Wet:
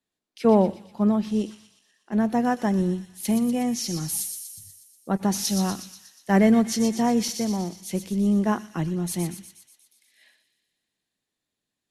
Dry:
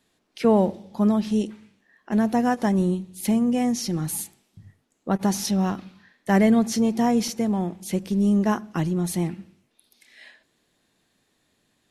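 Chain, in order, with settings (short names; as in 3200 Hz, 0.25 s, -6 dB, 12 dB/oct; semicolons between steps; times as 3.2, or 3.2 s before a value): thin delay 0.121 s, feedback 70%, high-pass 3200 Hz, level -5 dB; three-band expander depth 40%; gain -1.5 dB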